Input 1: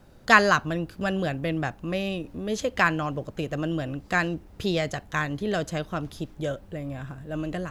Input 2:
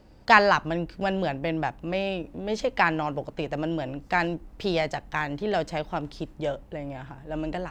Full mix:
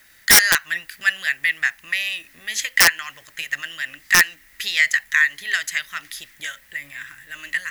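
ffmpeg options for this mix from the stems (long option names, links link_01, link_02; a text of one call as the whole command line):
ffmpeg -i stem1.wav -i stem2.wav -filter_complex "[0:a]highpass=frequency=1900:width_type=q:width=8.9,aemphasis=mode=production:type=75kf,aeval=exprs='(mod(1.26*val(0)+1,2)-1)/1.26':channel_layout=same,volume=1.5dB[link_01];[1:a]acompressor=threshold=-34dB:ratio=3,flanger=delay=8.1:depth=6.2:regen=66:speed=0.96:shape=sinusoidal,volume=-10.5dB[link_02];[link_01][link_02]amix=inputs=2:normalize=0,acrusher=bits=8:mix=0:aa=0.5,alimiter=limit=-4.5dB:level=0:latency=1:release=221" out.wav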